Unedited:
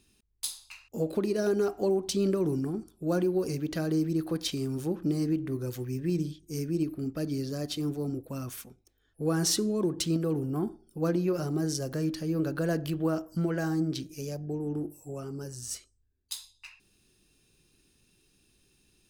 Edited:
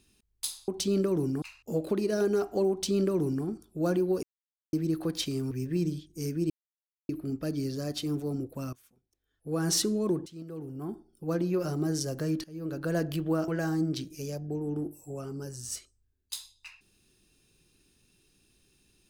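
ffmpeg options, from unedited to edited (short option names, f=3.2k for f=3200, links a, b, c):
-filter_complex "[0:a]asplit=11[a][b][c][d][e][f][g][h][i][j][k];[a]atrim=end=0.682[l];[b]atrim=start=1.968:end=2.712[m];[c]atrim=start=0.678:end=3.49,asetpts=PTS-STARTPTS,afade=t=out:st=2.808:d=0.004:c=hsin[n];[d]atrim=start=3.49:end=3.99,asetpts=PTS-STARTPTS,volume=0[o];[e]atrim=start=3.99:end=4.772,asetpts=PTS-STARTPTS,afade=t=in:d=0.004:c=hsin[p];[f]atrim=start=5.838:end=6.83,asetpts=PTS-STARTPTS,afade=t=out:st=0.988:d=0.004:c=hsin,apad=pad_dur=0.59[q];[g]atrim=start=6.83:end=8.47,asetpts=PTS-STARTPTS,afade=t=in:d=0.004:c=hsin,afade=t=out:st=1.636:d=0.004:c=hsin:silence=0.0891251[r];[h]atrim=start=8.47:end=10,asetpts=PTS-STARTPTS,afade=t=in:d=0.99:c=qua:silence=0.0891251,afade=t=out:st=1.526:d=0.004:c=hsin:silence=0.0891251[s];[i]atrim=start=10:end=12.18,asetpts=PTS-STARTPTS,afade=t=in:d=1.41:silence=0.0891251,afade=t=out:st=2.176:d=0.004:c=hsin:silence=0.0841395[t];[j]atrim=start=12.18:end=13.222,asetpts=PTS-STARTPTS,afade=t=in:d=0.52:silence=0.0841395[u];[k]atrim=start=13.468[v];[l][m]acrossfade=d=0.004:c1=hsin:c2=hsin[w];[n][o][p]concat=n=3:v=0:a=1[x];[w][x]acrossfade=d=0.004:c1=hsin:c2=hsin[y];[q][r][s][t][u]concat=n=5:v=0:a=1[z];[y][z]acrossfade=d=0.004:c1=hsin:c2=hsin[aa];[aa][v]acrossfade=d=0.004:c1=hsin:c2=hsin"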